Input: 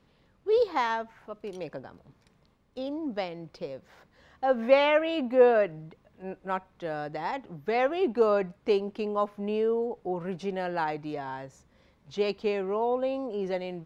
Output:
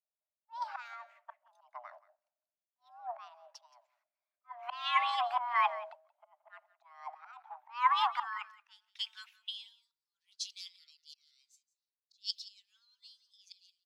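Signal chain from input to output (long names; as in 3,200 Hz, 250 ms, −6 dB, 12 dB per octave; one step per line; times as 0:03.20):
noise gate −49 dBFS, range −10 dB
harmonic and percussive parts rebalanced harmonic −12 dB
volume swells 339 ms
high-pass filter sweep 120 Hz → 3,900 Hz, 0:06.43–0:09.87
frequency shifter +480 Hz
on a send: single-tap delay 177 ms −13.5 dB
on the sum: multiband upward and downward expander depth 100%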